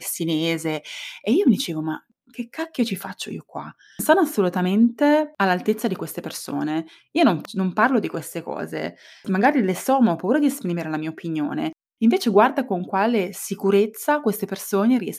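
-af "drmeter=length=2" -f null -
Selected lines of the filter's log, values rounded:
Channel 1: DR: 12.7
Overall DR: 12.7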